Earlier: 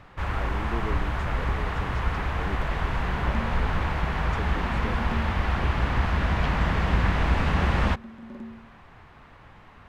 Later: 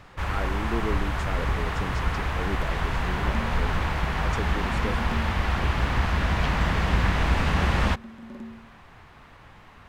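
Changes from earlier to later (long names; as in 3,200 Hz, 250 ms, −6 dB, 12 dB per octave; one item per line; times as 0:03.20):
speech +4.5 dB
master: add high-shelf EQ 4,200 Hz +8.5 dB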